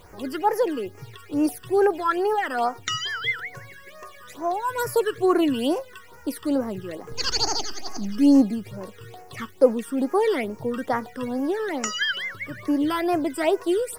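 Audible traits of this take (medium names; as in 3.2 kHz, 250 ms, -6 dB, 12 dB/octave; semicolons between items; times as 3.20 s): a quantiser's noise floor 10-bit, dither triangular; phasing stages 12, 2.3 Hz, lowest notch 690–3600 Hz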